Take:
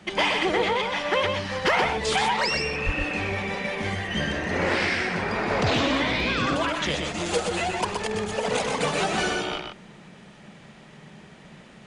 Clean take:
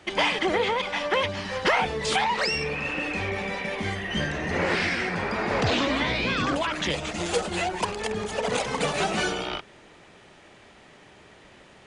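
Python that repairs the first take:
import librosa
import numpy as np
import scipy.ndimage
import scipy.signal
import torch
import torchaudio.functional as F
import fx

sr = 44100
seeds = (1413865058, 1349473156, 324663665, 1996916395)

y = fx.fix_declip(x, sr, threshold_db=-13.0)
y = fx.highpass(y, sr, hz=140.0, slope=24, at=(2.85, 2.97), fade=0.02)
y = fx.noise_reduce(y, sr, print_start_s=11.27, print_end_s=11.77, reduce_db=6.0)
y = fx.fix_echo_inverse(y, sr, delay_ms=124, level_db=-5.0)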